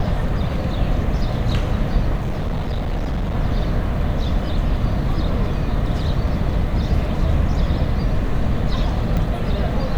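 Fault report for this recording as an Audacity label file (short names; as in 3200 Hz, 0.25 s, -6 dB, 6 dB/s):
2.170000	3.350000	clipped -18.5 dBFS
9.170000	9.170000	pop -12 dBFS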